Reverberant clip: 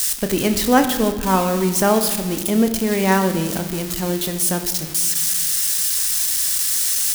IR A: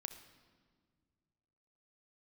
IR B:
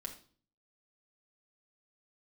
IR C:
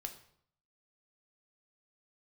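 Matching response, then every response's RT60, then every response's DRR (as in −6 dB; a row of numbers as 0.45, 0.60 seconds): A; 1.8, 0.45, 0.65 seconds; 7.0, 0.5, 5.0 decibels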